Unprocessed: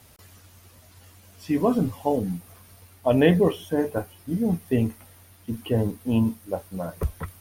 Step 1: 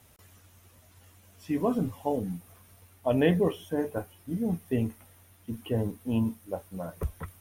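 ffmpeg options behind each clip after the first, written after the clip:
ffmpeg -i in.wav -af "equalizer=frequency=4600:width_type=o:width=0.33:gain=-6,volume=-5.5dB" out.wav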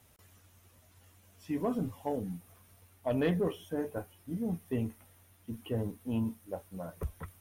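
ffmpeg -i in.wav -af "asoftclip=type=tanh:threshold=-16dB,volume=-4.5dB" out.wav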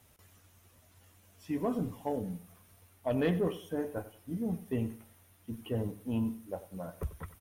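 ffmpeg -i in.wav -af "aecho=1:1:93|186|279:0.168|0.052|0.0161" out.wav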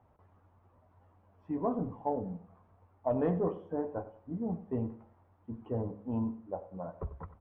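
ffmpeg -i in.wav -af "lowpass=frequency=930:width_type=q:width=2.1,bandreject=frequency=68.87:width_type=h:width=4,bandreject=frequency=137.74:width_type=h:width=4,bandreject=frequency=206.61:width_type=h:width=4,bandreject=frequency=275.48:width_type=h:width=4,bandreject=frequency=344.35:width_type=h:width=4,bandreject=frequency=413.22:width_type=h:width=4,bandreject=frequency=482.09:width_type=h:width=4,bandreject=frequency=550.96:width_type=h:width=4,bandreject=frequency=619.83:width_type=h:width=4,bandreject=frequency=688.7:width_type=h:width=4,volume=-1.5dB" out.wav

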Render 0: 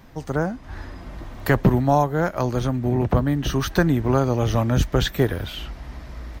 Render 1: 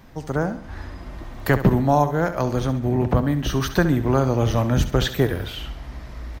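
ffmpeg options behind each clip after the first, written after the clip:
ffmpeg -i in.wav -af "aecho=1:1:68|136|204|272:0.251|0.111|0.0486|0.0214" out.wav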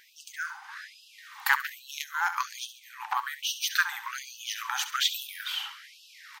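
ffmpeg -i in.wav -af "aeval=exprs='0.596*(cos(1*acos(clip(val(0)/0.596,-1,1)))-cos(1*PI/2))+0.133*(cos(3*acos(clip(val(0)/0.596,-1,1)))-cos(3*PI/2))+0.0596*(cos(5*acos(clip(val(0)/0.596,-1,1)))-cos(5*PI/2))+0.0106*(cos(6*acos(clip(val(0)/0.596,-1,1)))-cos(6*PI/2))+0.0119*(cos(7*acos(clip(val(0)/0.596,-1,1)))-cos(7*PI/2))':channel_layout=same,afftfilt=real='re*gte(b*sr/1024,740*pow(2600/740,0.5+0.5*sin(2*PI*1.2*pts/sr)))':imag='im*gte(b*sr/1024,740*pow(2600/740,0.5+0.5*sin(2*PI*1.2*pts/sr)))':win_size=1024:overlap=0.75,volume=5.5dB" out.wav

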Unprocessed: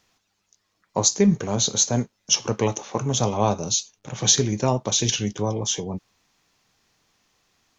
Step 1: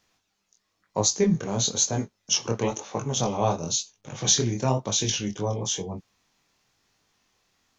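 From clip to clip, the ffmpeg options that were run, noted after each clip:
ffmpeg -i in.wav -af "flanger=delay=19:depth=6.9:speed=1" out.wav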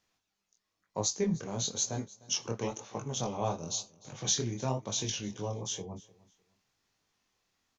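ffmpeg -i in.wav -af "aecho=1:1:303|606:0.0794|0.0191,volume=-8.5dB" out.wav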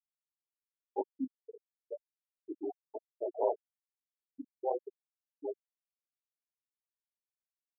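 ffmpeg -i in.wav -af "highpass=frequency=510:width_type=q:width=0.5412,highpass=frequency=510:width_type=q:width=1.307,lowpass=frequency=2800:width_type=q:width=0.5176,lowpass=frequency=2800:width_type=q:width=0.7071,lowpass=frequency=2800:width_type=q:width=1.932,afreqshift=-140,afftfilt=real='re*gte(hypot(re,im),0.0631)':imag='im*gte(hypot(re,im),0.0631)':win_size=1024:overlap=0.75,volume=5dB" out.wav

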